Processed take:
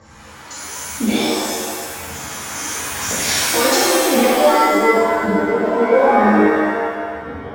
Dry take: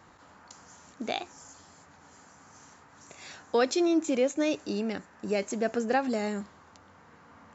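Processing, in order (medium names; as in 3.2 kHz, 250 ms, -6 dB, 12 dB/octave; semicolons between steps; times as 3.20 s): recorder AGC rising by 8.5 dB/s; low-pass sweep 6.5 kHz -> 450 Hz, 3.98–4.51 s; phaser 0.96 Hz, delay 3.6 ms, feedback 74%; in parallel at -7.5 dB: hard clipper -31 dBFS, distortion -2 dB; on the sum: pitch-shifted reverb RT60 1.6 s, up +7 st, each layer -2 dB, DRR -10.5 dB; trim -4.5 dB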